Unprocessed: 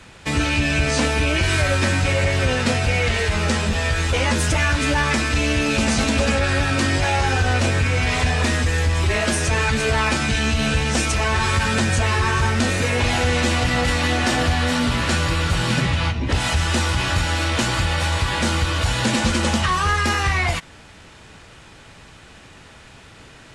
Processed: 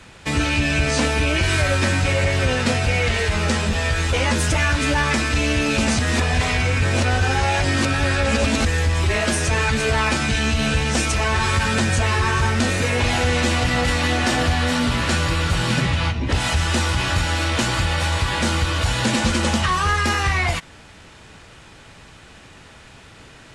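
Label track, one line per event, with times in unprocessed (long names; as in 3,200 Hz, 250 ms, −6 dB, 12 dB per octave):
5.990000	8.650000	reverse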